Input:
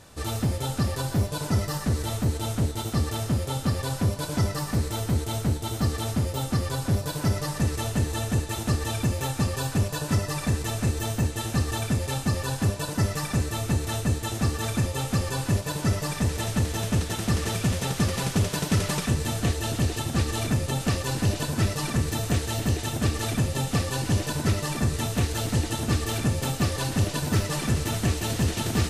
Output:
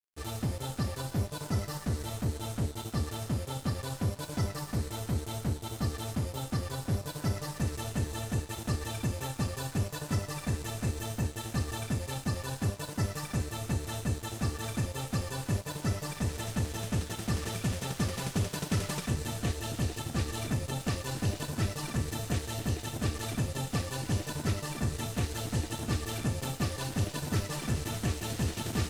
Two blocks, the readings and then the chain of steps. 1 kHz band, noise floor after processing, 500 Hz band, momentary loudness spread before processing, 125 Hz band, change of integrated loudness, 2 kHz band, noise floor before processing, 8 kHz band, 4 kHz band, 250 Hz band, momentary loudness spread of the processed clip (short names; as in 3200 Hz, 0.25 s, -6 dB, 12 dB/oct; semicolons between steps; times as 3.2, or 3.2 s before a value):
-7.0 dB, -45 dBFS, -7.0 dB, 2 LU, -7.0 dB, -7.0 dB, -7.0 dB, -35 dBFS, -7.0 dB, -7.5 dB, -7.0 dB, 2 LU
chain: crossover distortion -41 dBFS; gain -6 dB